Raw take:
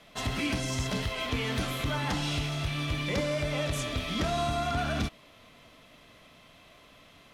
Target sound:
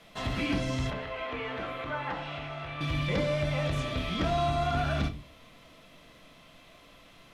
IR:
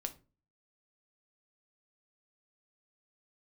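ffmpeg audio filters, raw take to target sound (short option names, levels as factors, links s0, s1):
-filter_complex "[0:a]acrossover=split=4200[s0][s1];[s1]acompressor=threshold=0.00224:ratio=4:attack=1:release=60[s2];[s0][s2]amix=inputs=2:normalize=0,asettb=1/sr,asplit=3[s3][s4][s5];[s3]atrim=end=0.904[s6];[s4]atrim=start=0.9:end=2.81,asetpts=PTS-STARTPTS,afade=t=in:d=0.004:c=qsin,afade=t=out:st=1.906:d=0.004:c=qsin,acrossover=split=380 2700:gain=0.2 1 0.141[s7][s8][s9];[s7][s8][s9]amix=inputs=3:normalize=0[s10];[s5]atrim=start=2.806[s11];[s6][s10]acrossfade=d=0.004:c1=hsin:c2=qsin[s12];[s12][s11]acrossfade=d=0.004:c1=qsin:c2=hsin[s13];[1:a]atrim=start_sample=2205[s14];[s13][s14]afir=irnorm=-1:irlink=0,volume=1.19"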